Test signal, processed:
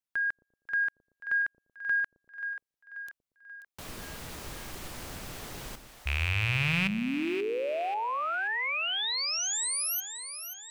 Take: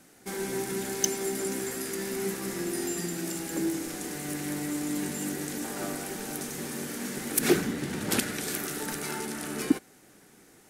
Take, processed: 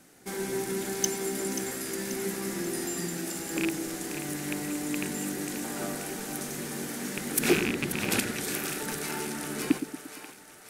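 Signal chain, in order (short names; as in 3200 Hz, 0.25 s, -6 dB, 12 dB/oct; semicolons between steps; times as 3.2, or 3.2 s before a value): rattling part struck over -32 dBFS, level -16 dBFS; in parallel at -8.5 dB: soft clip -18.5 dBFS; on the sum: split-band echo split 520 Hz, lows 0.116 s, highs 0.534 s, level -10 dB; gain -3 dB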